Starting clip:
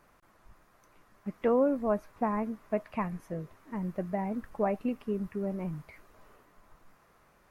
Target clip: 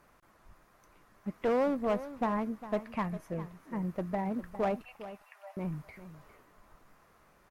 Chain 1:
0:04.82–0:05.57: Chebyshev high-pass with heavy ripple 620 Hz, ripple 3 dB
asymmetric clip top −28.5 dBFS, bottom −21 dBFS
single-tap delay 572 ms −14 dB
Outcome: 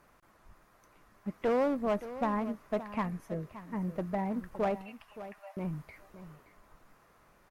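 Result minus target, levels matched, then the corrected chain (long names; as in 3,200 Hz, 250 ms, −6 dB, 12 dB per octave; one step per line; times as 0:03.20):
echo 168 ms late
0:04.82–0:05.57: Chebyshev high-pass with heavy ripple 620 Hz, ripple 3 dB
asymmetric clip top −28.5 dBFS, bottom −21 dBFS
single-tap delay 404 ms −14 dB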